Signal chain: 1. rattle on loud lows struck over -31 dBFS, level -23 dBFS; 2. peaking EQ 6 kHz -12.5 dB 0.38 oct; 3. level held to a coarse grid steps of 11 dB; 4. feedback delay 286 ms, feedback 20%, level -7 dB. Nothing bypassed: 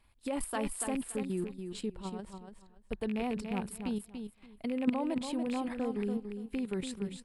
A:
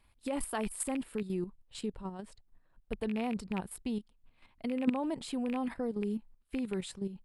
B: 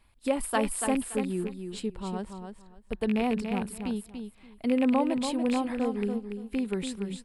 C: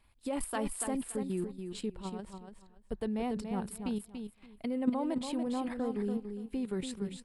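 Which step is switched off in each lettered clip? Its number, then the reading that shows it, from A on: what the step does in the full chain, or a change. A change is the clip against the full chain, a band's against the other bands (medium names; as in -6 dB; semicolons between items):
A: 4, momentary loudness spread change -2 LU; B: 3, crest factor change -2.5 dB; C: 1, 2 kHz band -3.0 dB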